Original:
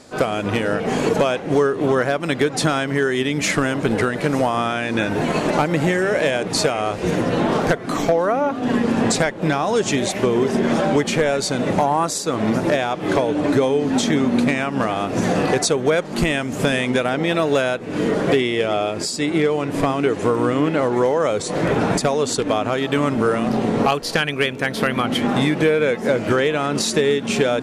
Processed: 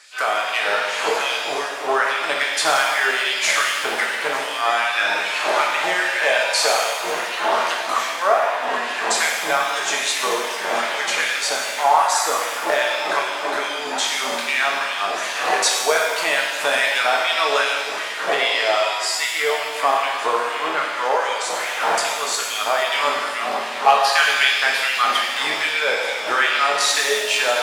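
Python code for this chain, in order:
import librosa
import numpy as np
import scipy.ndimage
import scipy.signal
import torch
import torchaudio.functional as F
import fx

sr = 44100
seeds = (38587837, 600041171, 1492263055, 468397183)

y = fx.filter_lfo_highpass(x, sr, shape='sine', hz=2.5, low_hz=740.0, high_hz=2900.0, q=1.9)
y = fx.rev_shimmer(y, sr, seeds[0], rt60_s=1.4, semitones=7, shimmer_db=-8, drr_db=-1.5)
y = F.gain(torch.from_numpy(y), -1.0).numpy()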